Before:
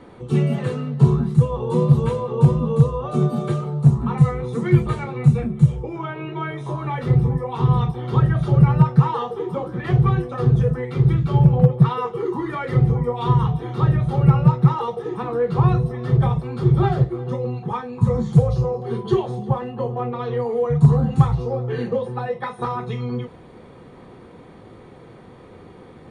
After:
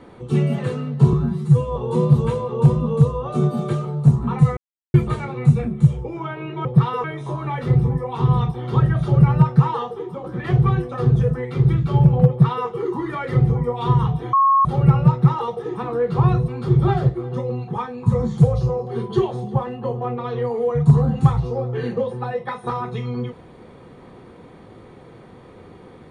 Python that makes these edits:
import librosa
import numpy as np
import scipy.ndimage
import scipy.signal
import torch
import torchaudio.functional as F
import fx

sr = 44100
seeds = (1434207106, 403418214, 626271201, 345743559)

y = fx.edit(x, sr, fx.stretch_span(start_s=1.13, length_s=0.42, factor=1.5),
    fx.silence(start_s=4.36, length_s=0.37),
    fx.fade_out_to(start_s=9.14, length_s=0.5, floor_db=-7.5),
    fx.duplicate(start_s=11.69, length_s=0.39, to_s=6.44),
    fx.bleep(start_s=13.73, length_s=0.32, hz=1090.0, db=-11.5),
    fx.cut(start_s=15.88, length_s=0.55), tone=tone)